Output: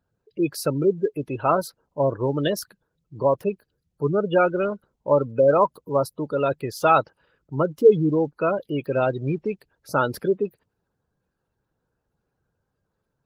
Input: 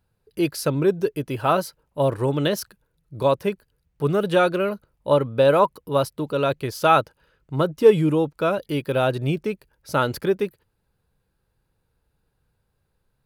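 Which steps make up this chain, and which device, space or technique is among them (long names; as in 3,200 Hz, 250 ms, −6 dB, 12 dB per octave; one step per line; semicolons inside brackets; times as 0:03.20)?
noise-suppressed video call (high-pass filter 130 Hz 6 dB per octave; gate on every frequency bin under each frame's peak −20 dB strong; Opus 20 kbit/s 48,000 Hz)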